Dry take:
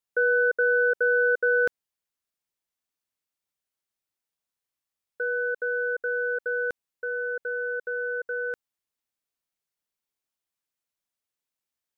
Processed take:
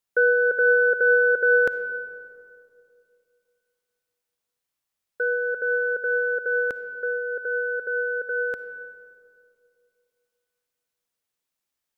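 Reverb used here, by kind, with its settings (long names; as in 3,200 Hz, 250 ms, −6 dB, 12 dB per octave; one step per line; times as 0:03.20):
comb and all-pass reverb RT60 2.5 s, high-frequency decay 0.4×, pre-delay 15 ms, DRR 11.5 dB
level +4 dB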